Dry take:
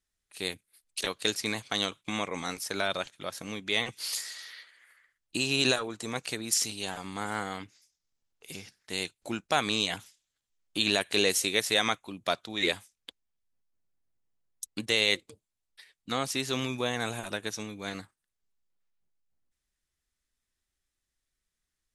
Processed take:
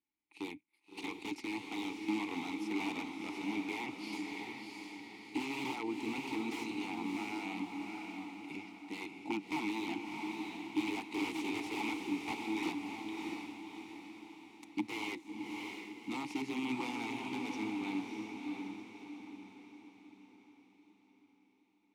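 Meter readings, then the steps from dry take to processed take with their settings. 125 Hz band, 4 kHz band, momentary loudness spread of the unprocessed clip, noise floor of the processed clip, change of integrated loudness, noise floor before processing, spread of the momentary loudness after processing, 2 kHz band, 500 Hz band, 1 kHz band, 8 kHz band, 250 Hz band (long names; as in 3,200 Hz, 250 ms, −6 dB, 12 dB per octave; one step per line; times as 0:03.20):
−12.0 dB, −16.5 dB, 14 LU, −70 dBFS, −9.5 dB, −85 dBFS, 12 LU, −9.0 dB, −11.5 dB, −5.5 dB, −19.5 dB, +0.5 dB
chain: wrap-around overflow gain 25 dB
formant filter u
feedback delay with all-pass diffusion 645 ms, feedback 48%, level −3.5 dB
level +10 dB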